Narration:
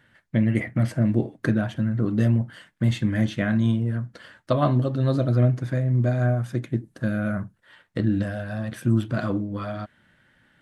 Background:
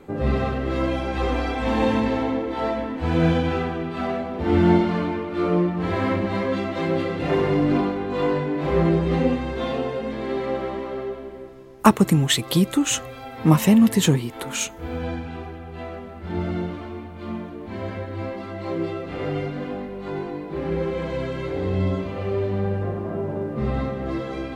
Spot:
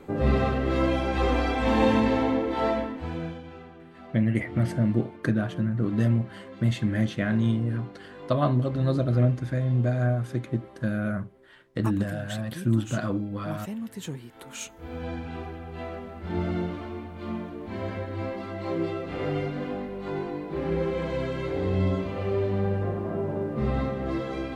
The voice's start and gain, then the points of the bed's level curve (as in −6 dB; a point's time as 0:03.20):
3.80 s, −2.5 dB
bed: 0:02.77 −0.5 dB
0:03.40 −20 dB
0:13.88 −20 dB
0:15.36 −2 dB